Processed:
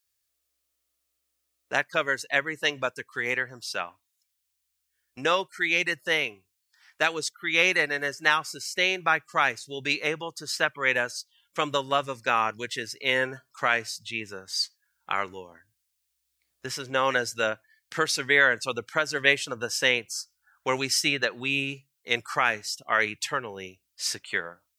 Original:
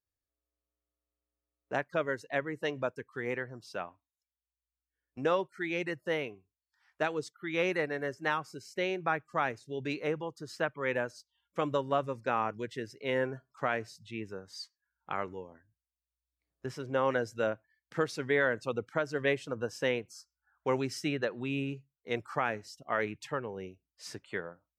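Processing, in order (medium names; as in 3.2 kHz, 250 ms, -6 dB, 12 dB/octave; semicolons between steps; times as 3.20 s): tilt shelf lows -9.5 dB, about 1.3 kHz; trim +8.5 dB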